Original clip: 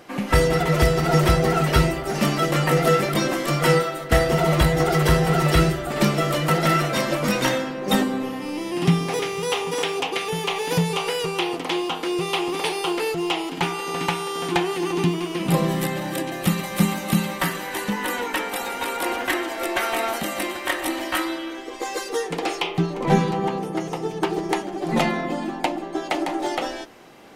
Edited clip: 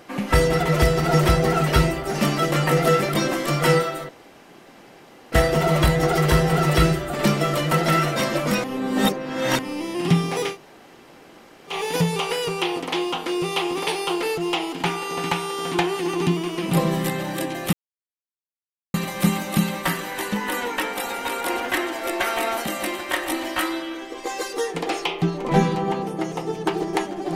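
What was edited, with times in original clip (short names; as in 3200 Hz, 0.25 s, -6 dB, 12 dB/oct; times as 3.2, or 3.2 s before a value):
4.09 insert room tone 1.23 s
7.41–8.36 reverse
9.3–10.49 room tone, crossfade 0.10 s
16.5 insert silence 1.21 s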